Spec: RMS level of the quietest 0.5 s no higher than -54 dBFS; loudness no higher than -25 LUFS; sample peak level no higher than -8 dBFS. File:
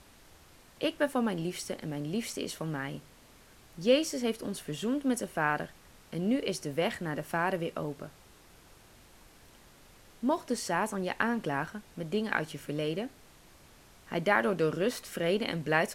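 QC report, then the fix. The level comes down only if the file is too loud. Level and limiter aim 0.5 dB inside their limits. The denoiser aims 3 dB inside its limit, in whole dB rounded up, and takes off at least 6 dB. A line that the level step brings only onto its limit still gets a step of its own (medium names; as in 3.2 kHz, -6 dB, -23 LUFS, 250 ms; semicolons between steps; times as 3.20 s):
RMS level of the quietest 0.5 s -57 dBFS: pass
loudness -32.0 LUFS: pass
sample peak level -10.5 dBFS: pass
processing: none needed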